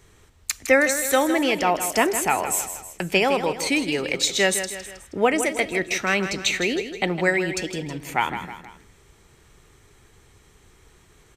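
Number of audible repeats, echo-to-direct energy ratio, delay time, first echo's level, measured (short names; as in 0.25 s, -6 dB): 3, -9.0 dB, 0.159 s, -10.0 dB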